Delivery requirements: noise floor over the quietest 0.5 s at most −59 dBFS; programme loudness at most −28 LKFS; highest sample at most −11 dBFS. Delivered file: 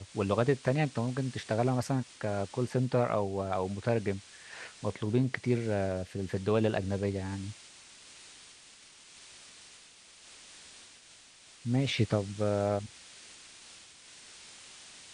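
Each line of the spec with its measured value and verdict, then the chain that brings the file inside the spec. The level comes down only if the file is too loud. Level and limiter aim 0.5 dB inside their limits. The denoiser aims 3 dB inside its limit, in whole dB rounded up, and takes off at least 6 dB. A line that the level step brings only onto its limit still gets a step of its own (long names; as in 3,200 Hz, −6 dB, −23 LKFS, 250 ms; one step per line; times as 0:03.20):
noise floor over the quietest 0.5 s −56 dBFS: out of spec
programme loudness −31.5 LKFS: in spec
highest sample −12.0 dBFS: in spec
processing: broadband denoise 6 dB, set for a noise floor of −56 dBFS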